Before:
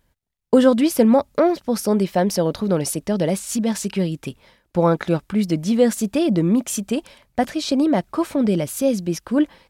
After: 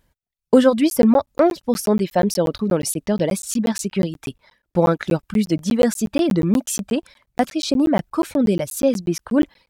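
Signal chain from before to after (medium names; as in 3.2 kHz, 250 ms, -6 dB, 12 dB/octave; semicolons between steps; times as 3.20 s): reverb removal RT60 0.88 s; crackling interface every 0.12 s, samples 512, zero, from 0.90 s; trim +1.5 dB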